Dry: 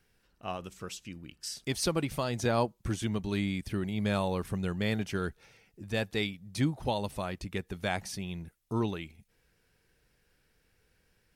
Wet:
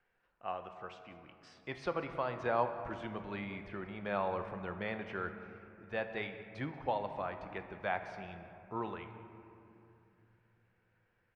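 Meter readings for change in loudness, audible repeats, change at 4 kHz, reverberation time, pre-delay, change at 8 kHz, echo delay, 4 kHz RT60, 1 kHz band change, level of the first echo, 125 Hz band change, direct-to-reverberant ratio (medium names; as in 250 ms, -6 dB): -6.0 dB, 1, -14.5 dB, 2.8 s, 4 ms, under -25 dB, 188 ms, 1.5 s, -0.5 dB, -20.0 dB, -13.5 dB, 7.0 dB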